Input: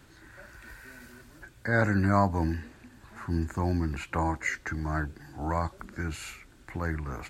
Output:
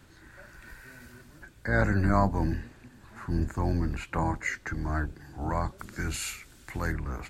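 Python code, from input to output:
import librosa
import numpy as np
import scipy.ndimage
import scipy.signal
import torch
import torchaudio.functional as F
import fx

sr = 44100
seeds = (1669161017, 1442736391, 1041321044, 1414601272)

y = fx.octave_divider(x, sr, octaves=1, level_db=-2.0)
y = fx.high_shelf(y, sr, hz=2800.0, db=11.5, at=(5.78, 6.91), fade=0.02)
y = y * librosa.db_to_amplitude(-1.0)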